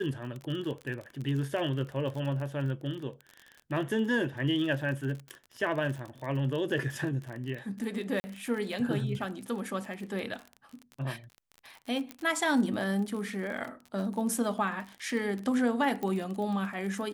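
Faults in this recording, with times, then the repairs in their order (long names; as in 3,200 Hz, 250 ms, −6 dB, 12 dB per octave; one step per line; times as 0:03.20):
surface crackle 39 per second −36 dBFS
0:08.20–0:08.24: drop-out 40 ms
0:12.11: click −22 dBFS
0:16.03: click −22 dBFS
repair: click removal
repair the gap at 0:08.20, 40 ms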